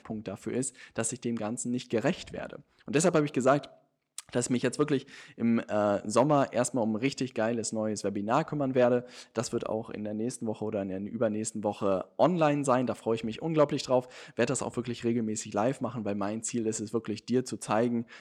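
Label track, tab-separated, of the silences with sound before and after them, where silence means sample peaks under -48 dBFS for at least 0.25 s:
3.730000	4.180000	silence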